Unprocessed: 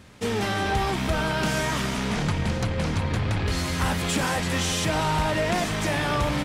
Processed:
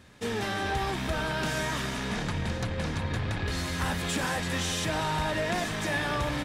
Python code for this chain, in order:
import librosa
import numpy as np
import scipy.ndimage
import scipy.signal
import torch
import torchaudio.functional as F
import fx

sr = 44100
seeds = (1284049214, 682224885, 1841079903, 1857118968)

y = fx.hum_notches(x, sr, base_hz=50, count=4)
y = fx.small_body(y, sr, hz=(1700.0, 3700.0), ring_ms=45, db=10)
y = F.gain(torch.from_numpy(y), -5.0).numpy()